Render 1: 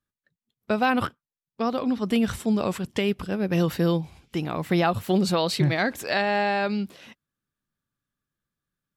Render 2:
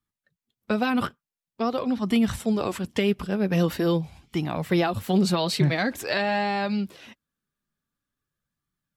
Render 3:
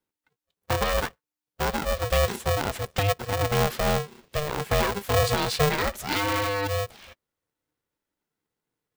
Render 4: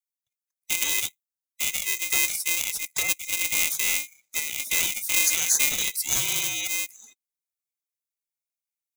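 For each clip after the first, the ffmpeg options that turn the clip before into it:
-filter_complex "[0:a]acrossover=split=390|3000[s0][s1][s2];[s1]acompressor=threshold=0.0631:ratio=6[s3];[s0][s3][s2]amix=inputs=3:normalize=0,flanger=delay=0.9:depth=4.1:regen=-45:speed=0.46:shape=sinusoidal,volume=1.68"
-af "aeval=exprs='val(0)*sgn(sin(2*PI*300*n/s))':c=same,volume=0.891"
-filter_complex "[0:a]afftfilt=real='real(if(lt(b,920),b+92*(1-2*mod(floor(b/92),2)),b),0)':imag='imag(if(lt(b,920),b+92*(1-2*mod(floor(b/92),2)),b),0)':win_size=2048:overlap=0.75,acrossover=split=290[s0][s1];[s1]aexciter=amount=6.3:drive=5.8:freq=4300[s2];[s0][s2]amix=inputs=2:normalize=0,afftdn=nr=15:nf=-39,volume=0.501"

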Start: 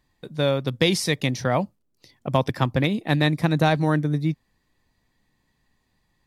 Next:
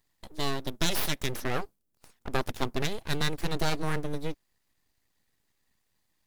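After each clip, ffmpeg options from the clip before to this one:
-af "crystalizer=i=2:c=0,aeval=exprs='abs(val(0))':c=same,volume=0.473"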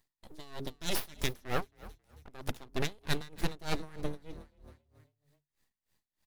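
-filter_complex "[0:a]bandreject=f=136.4:t=h:w=4,bandreject=f=272.8:t=h:w=4,bandreject=f=409.2:t=h:w=4,asplit=5[s0][s1][s2][s3][s4];[s1]adelay=271,afreqshift=36,volume=0.141[s5];[s2]adelay=542,afreqshift=72,volume=0.0624[s6];[s3]adelay=813,afreqshift=108,volume=0.0272[s7];[s4]adelay=1084,afreqshift=144,volume=0.012[s8];[s0][s5][s6][s7][s8]amix=inputs=5:normalize=0,aeval=exprs='val(0)*pow(10,-24*(0.5-0.5*cos(2*PI*3.2*n/s))/20)':c=same"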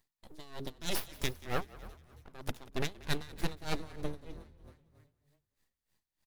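-filter_complex "[0:a]asplit=5[s0][s1][s2][s3][s4];[s1]adelay=184,afreqshift=-40,volume=0.1[s5];[s2]adelay=368,afreqshift=-80,volume=0.0537[s6];[s3]adelay=552,afreqshift=-120,volume=0.0292[s7];[s4]adelay=736,afreqshift=-160,volume=0.0157[s8];[s0][s5][s6][s7][s8]amix=inputs=5:normalize=0,volume=0.841"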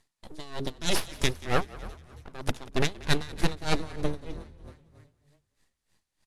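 -af "lowpass=f=11000:w=0.5412,lowpass=f=11000:w=1.3066,volume=2.66"

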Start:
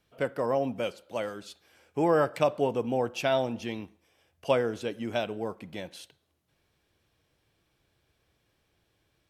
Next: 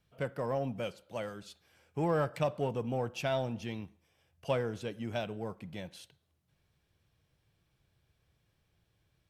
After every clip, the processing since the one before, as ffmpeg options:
-filter_complex "[0:a]lowshelf=f=210:t=q:w=1.5:g=6,asplit=2[s0][s1];[s1]asoftclip=type=hard:threshold=0.0473,volume=0.299[s2];[s0][s2]amix=inputs=2:normalize=0,volume=0.422"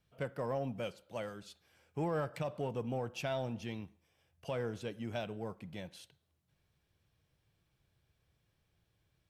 -af "alimiter=level_in=1.06:limit=0.0631:level=0:latency=1:release=125,volume=0.944,volume=0.75"

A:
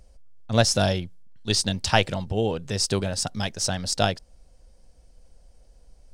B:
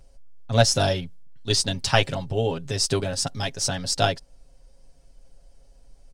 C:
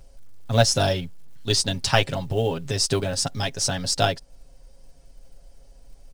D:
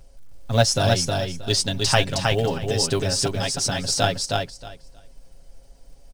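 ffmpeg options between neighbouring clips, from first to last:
-af "aecho=1:1:7.3:0.74,volume=0.891"
-filter_complex "[0:a]asplit=2[s0][s1];[s1]acompressor=threshold=0.0316:ratio=8,volume=0.708[s2];[s0][s2]amix=inputs=2:normalize=0,acrusher=bits=8:mode=log:mix=0:aa=0.000001,volume=0.891"
-af "aecho=1:1:315|630|945:0.708|0.12|0.0205"

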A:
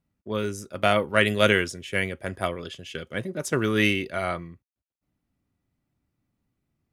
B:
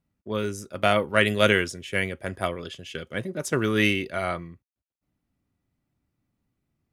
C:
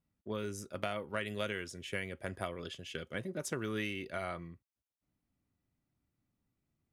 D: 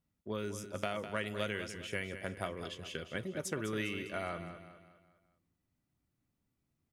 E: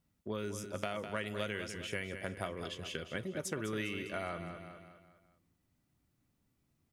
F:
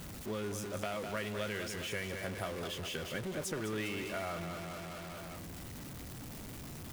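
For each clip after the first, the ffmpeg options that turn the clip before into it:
-af anull
-af "acompressor=threshold=0.0398:ratio=5,volume=0.501"
-af "aecho=1:1:203|406|609|812|1015:0.299|0.131|0.0578|0.0254|0.0112"
-af "acompressor=threshold=0.00355:ratio=1.5,volume=1.78"
-af "aeval=exprs='val(0)+0.5*0.015*sgn(val(0))':c=same,volume=0.708"

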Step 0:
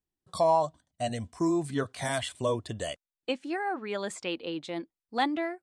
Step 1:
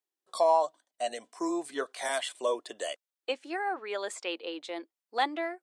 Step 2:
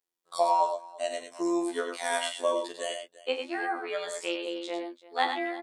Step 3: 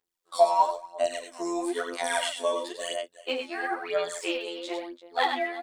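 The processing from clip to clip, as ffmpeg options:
-af "highpass=f=370:w=0.5412,highpass=f=370:w=1.3066"
-af "afftfilt=real='hypot(re,im)*cos(PI*b)':imag='0':win_size=2048:overlap=0.75,aecho=1:1:41|97|117|341:0.316|0.473|0.237|0.112,volume=1.58"
-af "aphaser=in_gain=1:out_gain=1:delay=4.7:decay=0.63:speed=1:type=sinusoidal"

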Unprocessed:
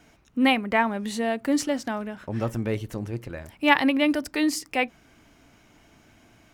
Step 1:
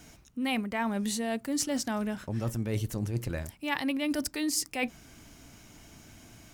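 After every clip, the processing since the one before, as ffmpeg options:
-af "bass=f=250:g=6,treble=f=4000:g=11,areverse,acompressor=threshold=0.0447:ratio=12,areverse"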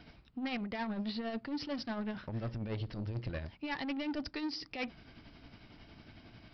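-af "aresample=11025,asoftclip=type=tanh:threshold=0.0266,aresample=44100,tremolo=f=11:d=0.46"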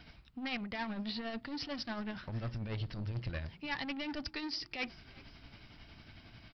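-filter_complex "[0:a]equalizer=f=370:t=o:w=2.6:g=-7.5,asplit=4[s0][s1][s2][s3];[s1]adelay=374,afreqshift=39,volume=0.075[s4];[s2]adelay=748,afreqshift=78,volume=0.0347[s5];[s3]adelay=1122,afreqshift=117,volume=0.0158[s6];[s0][s4][s5][s6]amix=inputs=4:normalize=0,volume=1.41"

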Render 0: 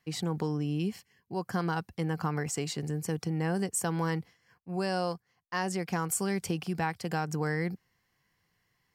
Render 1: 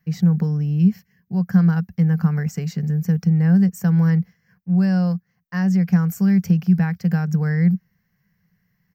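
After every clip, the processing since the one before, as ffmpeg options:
-af "firequalizer=gain_entry='entry(130,0);entry(180,13);entry(290,-14);entry(470,-7);entry(970,-13);entry(1600,-3);entry(3300,-16);entry(5900,-7);entry(9500,-27);entry(14000,2)':delay=0.05:min_phase=1,volume=2.51"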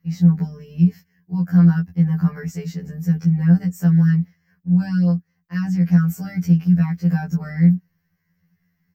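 -af "afftfilt=real='re*2*eq(mod(b,4),0)':imag='im*2*eq(mod(b,4),0)':win_size=2048:overlap=0.75"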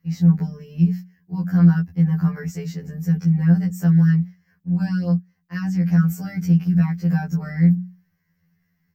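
-af "bandreject=f=60:t=h:w=6,bandreject=f=120:t=h:w=6,bandreject=f=180:t=h:w=6"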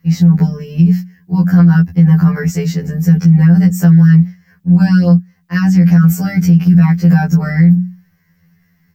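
-af "alimiter=level_in=5.01:limit=0.891:release=50:level=0:latency=1,volume=0.891"

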